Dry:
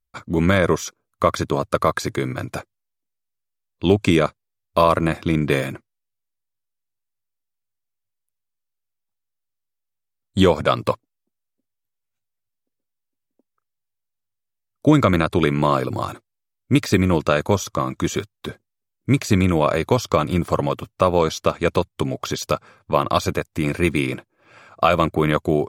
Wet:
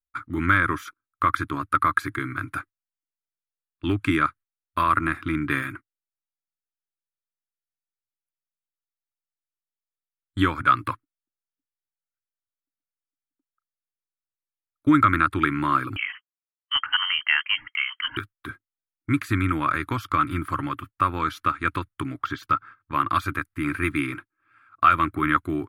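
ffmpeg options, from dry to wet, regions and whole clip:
-filter_complex "[0:a]asettb=1/sr,asplit=3[s0][s1][s2];[s0]atrim=end=15.964[s3];[s1]atrim=start=15.96:end=18.17,asetpts=PTS-STARTPTS,afade=t=in:d=0.004:c=qsin,afade=t=out:st=2.206:d=0.004:c=qsin,highpass=170,lowpass=f=2800:t=q:w=0.5098,lowpass=f=2800:t=q:w=0.6013,lowpass=f=2800:t=q:w=0.9,lowpass=f=2800:t=q:w=2.563,afreqshift=-3300[s4];[s2]atrim=start=18.166[s5];[s3][s4]acrossfade=d=0.004:c1=hsin:c2=qsin[s6];[s6][s5]acrossfade=d=0.004:c1=qsin:c2=hsin,asettb=1/sr,asplit=3[s7][s8][s9];[s7]atrim=end=22.224[s10];[s8]atrim=start=22.22:end=22.92,asetpts=PTS-STARTPTS,afade=t=in:d=0.004:c=qsin,afade=t=out:st=0.696:d=0.004:c=qsin,equalizer=f=11000:t=o:w=1.1:g=-13,bandreject=f=2400:w=14[s11];[s9]atrim=start=22.916[s12];[s10][s11]acrossfade=d=0.004:c1=hsin:c2=qsin[s13];[s13][s12]acrossfade=d=0.004:c1=qsin:c2=hsin,firequalizer=gain_entry='entry(100,0);entry(200,-13);entry(290,4);entry(450,-19);entry(660,-16);entry(1300,11);entry(2500,-1);entry(5800,-16);entry(8500,-15);entry(15000,-2)':delay=0.05:min_phase=1,agate=range=0.251:threshold=0.0141:ratio=16:detection=peak,equalizer=f=9800:t=o:w=0.46:g=13,volume=0.631"

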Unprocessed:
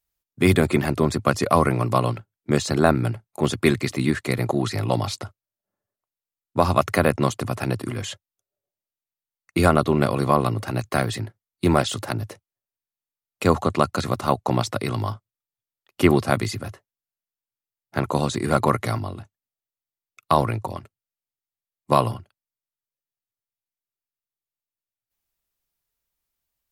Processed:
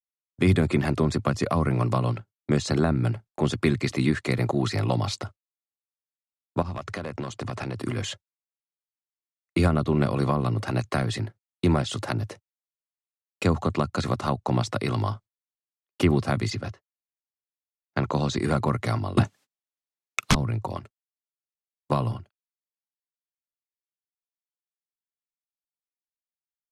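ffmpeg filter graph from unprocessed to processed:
-filter_complex "[0:a]asettb=1/sr,asplit=3[s0][s1][s2];[s0]atrim=end=6.624[s3];[s1]atrim=start=6.62:end=7.78,asetpts=PTS-STARTPTS,afade=t=in:d=0.004:c=qsin,afade=t=out:st=1.156:d=0.004:c=qsin,lowpass=8200,acompressor=threshold=0.0501:ratio=8:attack=3.2:release=140:knee=1:detection=peak,asoftclip=type=hard:threshold=0.0668[s4];[s2]atrim=start=7.776[s5];[s3][s4]acrossfade=d=0.004:c1=hsin:c2=qsin[s6];[s6][s5]acrossfade=d=0.004:c1=qsin:c2=hsin,asettb=1/sr,asplit=3[s7][s8][s9];[s7]atrim=end=16.504[s10];[s8]atrim=start=16.5:end=18.39,asetpts=PTS-STARTPTS,afade=t=in:d=0.004:c=qsin,afade=t=out:st=1.886:d=0.004:c=qsin,agate=range=0.447:threshold=0.0178:ratio=16:release=100:detection=peak,highpass=f=62:w=0.5412,highpass=f=62:w=1.3066,highshelf=f=7500:t=q:w=1.5:g=-7.5[s11];[s9]atrim=start=18.386[s12];[s10][s11]acrossfade=d=0.004:c1=hsin:c2=qsin[s13];[s13][s12]acrossfade=d=0.004:c1=qsin:c2=hsin,asettb=1/sr,asplit=3[s14][s15][s16];[s14]atrim=end=19.174[s17];[s15]atrim=start=19.17:end=20.35,asetpts=PTS-STARTPTS,afade=t=in:d=0.004:c=qsin,afade=t=out:st=1.176:d=0.004:c=qsin,highpass=190,acontrast=31,aeval=exprs='0.891*sin(PI/2*8.91*val(0)/0.891)':c=same[s18];[s16]atrim=start=20.346[s19];[s17][s18]acrossfade=d=0.004:c1=hsin:c2=qsin[s20];[s20][s19]acrossfade=d=0.004:c1=qsin:c2=hsin,lowpass=7900,agate=range=0.0224:threshold=0.00708:ratio=16:detection=peak,acrossover=split=240[s21][s22];[s22]acompressor=threshold=0.0708:ratio=10[s23];[s21][s23]amix=inputs=2:normalize=0"

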